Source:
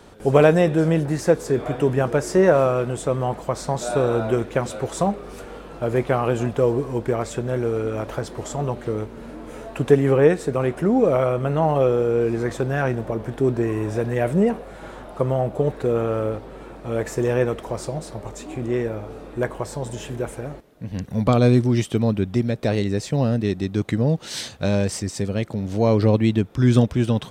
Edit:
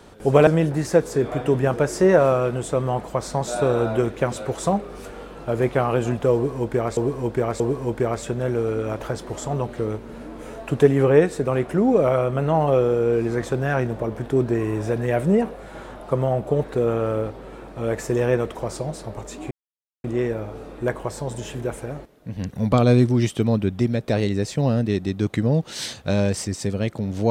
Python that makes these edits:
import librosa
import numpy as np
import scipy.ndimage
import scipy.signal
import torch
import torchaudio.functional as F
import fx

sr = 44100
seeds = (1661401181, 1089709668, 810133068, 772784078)

y = fx.edit(x, sr, fx.cut(start_s=0.47, length_s=0.34),
    fx.repeat(start_s=6.68, length_s=0.63, count=3),
    fx.insert_silence(at_s=18.59, length_s=0.53), tone=tone)